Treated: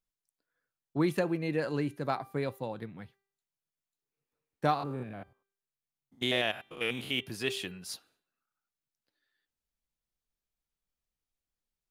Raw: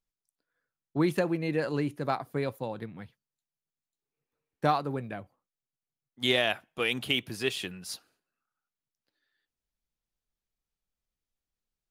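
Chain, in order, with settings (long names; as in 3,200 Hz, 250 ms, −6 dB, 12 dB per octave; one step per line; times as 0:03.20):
0:04.74–0:07.22: spectrum averaged block by block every 100 ms
hum removal 393.9 Hz, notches 11
level −2 dB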